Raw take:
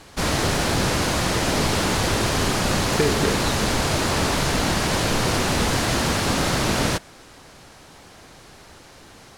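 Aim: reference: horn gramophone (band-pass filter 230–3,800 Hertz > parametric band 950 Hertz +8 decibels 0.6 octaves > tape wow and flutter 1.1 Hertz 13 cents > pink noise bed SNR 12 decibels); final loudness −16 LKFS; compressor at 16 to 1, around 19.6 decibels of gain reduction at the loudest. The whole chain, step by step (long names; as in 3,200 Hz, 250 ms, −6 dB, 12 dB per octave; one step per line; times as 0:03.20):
downward compressor 16 to 1, threshold −35 dBFS
band-pass filter 230–3,800 Hz
parametric band 950 Hz +8 dB 0.6 octaves
tape wow and flutter 1.1 Hz 13 cents
pink noise bed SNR 12 dB
level +23 dB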